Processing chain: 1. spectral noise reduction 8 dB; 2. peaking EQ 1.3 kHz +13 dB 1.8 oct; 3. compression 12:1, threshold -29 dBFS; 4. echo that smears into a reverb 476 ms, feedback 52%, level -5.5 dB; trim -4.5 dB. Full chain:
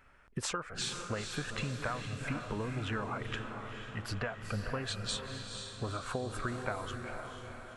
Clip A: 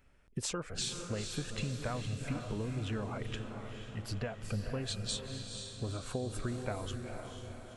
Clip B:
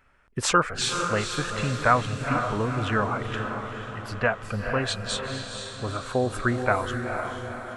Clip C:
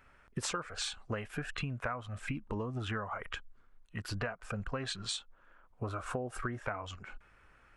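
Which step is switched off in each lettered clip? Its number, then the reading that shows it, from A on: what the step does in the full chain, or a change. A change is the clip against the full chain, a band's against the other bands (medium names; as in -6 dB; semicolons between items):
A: 2, 2 kHz band -7.0 dB; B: 3, mean gain reduction 7.5 dB; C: 4, echo-to-direct -4.0 dB to none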